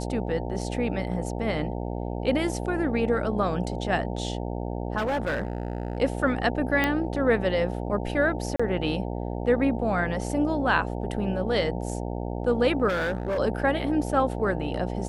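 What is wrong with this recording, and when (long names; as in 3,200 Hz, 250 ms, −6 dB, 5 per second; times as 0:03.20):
mains buzz 60 Hz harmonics 15 −31 dBFS
0:04.97–0:05.98: clipping −23 dBFS
0:06.84: click −10 dBFS
0:08.56–0:08.60: drop-out 35 ms
0:12.88–0:13.39: clipping −23.5 dBFS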